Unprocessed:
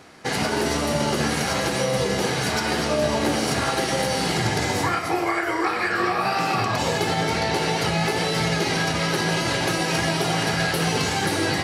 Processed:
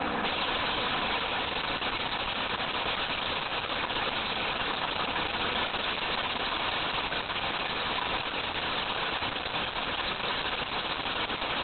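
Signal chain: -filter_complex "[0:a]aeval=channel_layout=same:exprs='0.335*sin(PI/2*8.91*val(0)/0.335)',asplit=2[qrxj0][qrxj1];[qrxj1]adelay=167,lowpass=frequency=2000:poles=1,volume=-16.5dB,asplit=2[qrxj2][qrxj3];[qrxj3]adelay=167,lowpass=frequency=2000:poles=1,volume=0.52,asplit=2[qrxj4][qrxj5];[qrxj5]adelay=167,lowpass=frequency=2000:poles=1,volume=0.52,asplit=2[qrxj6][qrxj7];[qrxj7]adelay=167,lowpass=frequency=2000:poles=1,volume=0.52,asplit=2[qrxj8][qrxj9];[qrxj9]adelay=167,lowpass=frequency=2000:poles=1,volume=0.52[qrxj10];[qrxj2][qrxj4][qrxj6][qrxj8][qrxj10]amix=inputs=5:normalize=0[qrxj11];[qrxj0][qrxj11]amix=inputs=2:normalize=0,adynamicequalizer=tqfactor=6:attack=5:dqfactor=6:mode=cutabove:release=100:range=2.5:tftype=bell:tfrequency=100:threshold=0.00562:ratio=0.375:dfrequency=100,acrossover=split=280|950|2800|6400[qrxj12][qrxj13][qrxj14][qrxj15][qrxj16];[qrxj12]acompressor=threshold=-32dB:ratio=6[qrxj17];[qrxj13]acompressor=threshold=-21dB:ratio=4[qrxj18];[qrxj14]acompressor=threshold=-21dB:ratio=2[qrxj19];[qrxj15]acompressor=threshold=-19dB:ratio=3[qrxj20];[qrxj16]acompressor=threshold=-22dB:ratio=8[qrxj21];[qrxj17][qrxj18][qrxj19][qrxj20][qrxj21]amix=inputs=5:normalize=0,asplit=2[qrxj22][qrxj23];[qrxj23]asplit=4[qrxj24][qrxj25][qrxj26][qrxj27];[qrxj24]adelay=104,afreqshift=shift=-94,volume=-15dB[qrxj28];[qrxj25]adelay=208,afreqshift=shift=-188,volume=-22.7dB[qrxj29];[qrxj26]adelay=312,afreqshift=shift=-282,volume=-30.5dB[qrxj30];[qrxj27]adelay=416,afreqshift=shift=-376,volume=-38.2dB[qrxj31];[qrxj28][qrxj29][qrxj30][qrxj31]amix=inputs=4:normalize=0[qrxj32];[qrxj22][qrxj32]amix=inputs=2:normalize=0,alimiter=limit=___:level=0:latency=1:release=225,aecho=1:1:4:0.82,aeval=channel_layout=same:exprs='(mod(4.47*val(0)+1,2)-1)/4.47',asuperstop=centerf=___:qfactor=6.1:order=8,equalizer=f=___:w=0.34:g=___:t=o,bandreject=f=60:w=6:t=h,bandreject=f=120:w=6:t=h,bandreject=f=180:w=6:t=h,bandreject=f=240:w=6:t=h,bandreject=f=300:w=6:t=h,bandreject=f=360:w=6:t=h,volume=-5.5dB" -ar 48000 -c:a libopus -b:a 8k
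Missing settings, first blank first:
-11dB, 2000, 970, 4.5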